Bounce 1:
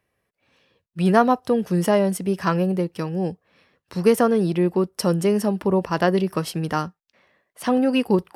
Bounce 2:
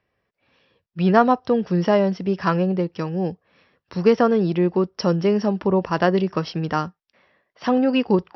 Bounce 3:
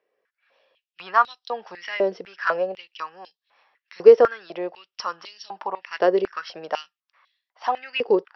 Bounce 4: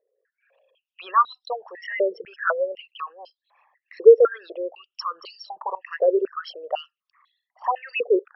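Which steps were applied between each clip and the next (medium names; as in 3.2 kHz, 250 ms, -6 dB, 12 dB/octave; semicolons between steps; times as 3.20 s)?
Chebyshev low-pass 5.7 kHz, order 8; peaking EQ 4.2 kHz -2 dB; trim +1.5 dB
step-sequenced high-pass 4 Hz 450–3800 Hz; trim -5.5 dB
resonances exaggerated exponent 3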